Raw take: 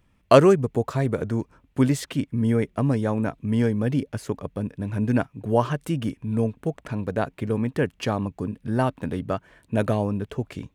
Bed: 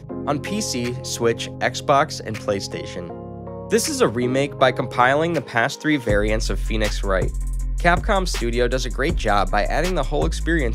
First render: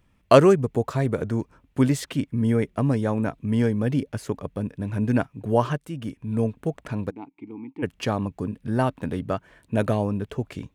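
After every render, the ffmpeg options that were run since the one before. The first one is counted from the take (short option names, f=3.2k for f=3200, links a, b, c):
-filter_complex "[0:a]asplit=3[a][b][c];[a]afade=t=out:st=7.09:d=0.02[d];[b]asplit=3[e][f][g];[e]bandpass=f=300:t=q:w=8,volume=0dB[h];[f]bandpass=f=870:t=q:w=8,volume=-6dB[i];[g]bandpass=f=2.24k:t=q:w=8,volume=-9dB[j];[h][i][j]amix=inputs=3:normalize=0,afade=t=in:st=7.09:d=0.02,afade=t=out:st=7.82:d=0.02[k];[c]afade=t=in:st=7.82:d=0.02[l];[d][k][l]amix=inputs=3:normalize=0,asplit=2[m][n];[m]atrim=end=5.78,asetpts=PTS-STARTPTS,afade=t=out:st=5.776:d=0.004:c=hsin:silence=0.251189[o];[n]atrim=start=5.78,asetpts=PTS-STARTPTS,afade=t=in:d=0.66:silence=0.251189[p];[o][p]concat=n=2:v=0:a=1"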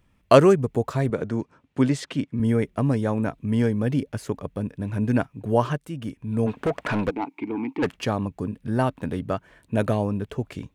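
-filter_complex "[0:a]asettb=1/sr,asplit=3[a][b][c];[a]atrim=end=1.104[d];[b]atrim=start=1.1:end=2.4,asetpts=PTS-STARTPTS,afade=t=in:d=0.004:c=qsin,afade=t=out:st=1.296:d=0.004:c=qsin,highpass=120,lowpass=7k[e];[c]atrim=start=2.396[f];[d][e]acrossfade=d=0.004:c1=hsin:c2=qsin[g];[g][f]acrossfade=d=0.004:c1=qsin:c2=hsin,asplit=3[h][i][j];[h]afade=t=out:st=6.46:d=0.02[k];[i]asplit=2[l][m];[m]highpass=f=720:p=1,volume=25dB,asoftclip=type=tanh:threshold=-14.5dB[n];[l][n]amix=inputs=2:normalize=0,lowpass=f=2.5k:p=1,volume=-6dB,afade=t=in:st=6.46:d=0.02,afade=t=out:st=7.95:d=0.02[o];[j]afade=t=in:st=7.95:d=0.02[p];[k][o][p]amix=inputs=3:normalize=0"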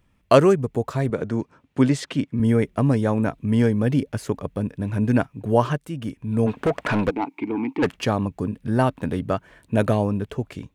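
-af "dynaudnorm=f=270:g=5:m=3dB"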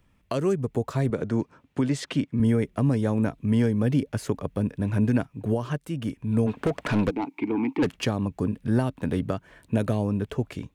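-filter_complex "[0:a]alimiter=limit=-13.5dB:level=0:latency=1:release=313,acrossover=split=420|3000[a][b][c];[b]acompressor=threshold=-30dB:ratio=6[d];[a][d][c]amix=inputs=3:normalize=0"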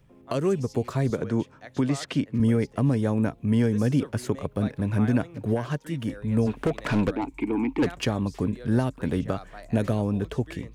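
-filter_complex "[1:a]volume=-24dB[a];[0:a][a]amix=inputs=2:normalize=0"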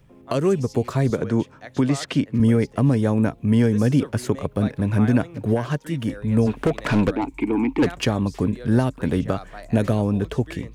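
-af "volume=4.5dB"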